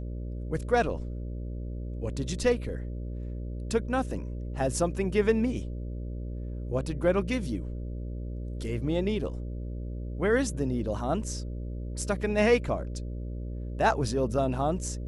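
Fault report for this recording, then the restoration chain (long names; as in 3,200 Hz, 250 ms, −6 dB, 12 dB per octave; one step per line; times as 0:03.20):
mains buzz 60 Hz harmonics 10 −35 dBFS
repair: hum removal 60 Hz, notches 10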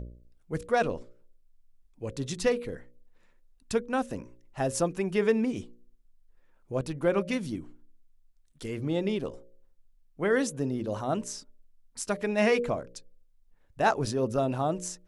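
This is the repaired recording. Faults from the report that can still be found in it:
none of them is left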